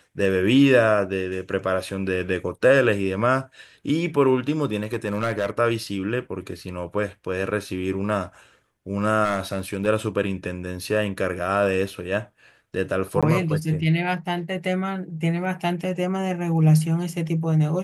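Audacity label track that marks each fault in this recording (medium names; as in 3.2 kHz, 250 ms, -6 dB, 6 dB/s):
4.830000	5.510000	clipped -18 dBFS
9.240000	9.880000	clipped -18 dBFS
13.210000	13.230000	dropout 16 ms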